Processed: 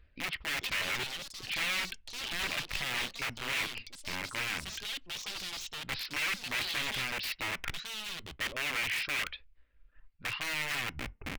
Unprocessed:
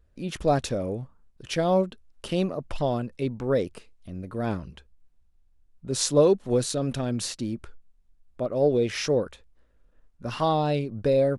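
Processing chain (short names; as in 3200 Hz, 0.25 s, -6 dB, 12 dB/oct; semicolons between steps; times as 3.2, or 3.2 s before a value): tape stop at the end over 0.64 s; reverb removal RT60 1 s; reverse; compressor 8:1, threshold -35 dBFS, peak gain reduction 20.5 dB; reverse; downsampling 11025 Hz; wrapped overs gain 36.5 dB; bell 2300 Hz +14 dB 1.2 oct; on a send at -17 dB: reverb RT60 0.25 s, pre-delay 3 ms; on the sum: echoes that change speed 0.491 s, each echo +6 st, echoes 2, each echo -6 dB; bell 490 Hz -3.5 dB 2.8 oct; gain +2 dB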